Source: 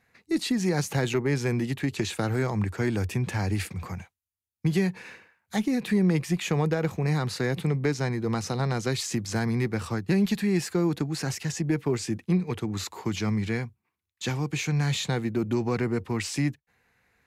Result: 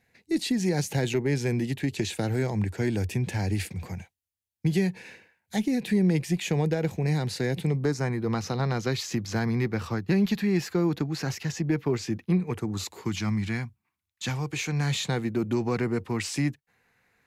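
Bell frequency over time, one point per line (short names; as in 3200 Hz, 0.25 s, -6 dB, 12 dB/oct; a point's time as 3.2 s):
bell -13 dB 0.48 oct
7.66 s 1200 Hz
8.3 s 8900 Hz
12.2 s 8900 Hz
12.73 s 2400 Hz
13.15 s 450 Hz
14.24 s 450 Hz
14.93 s 61 Hz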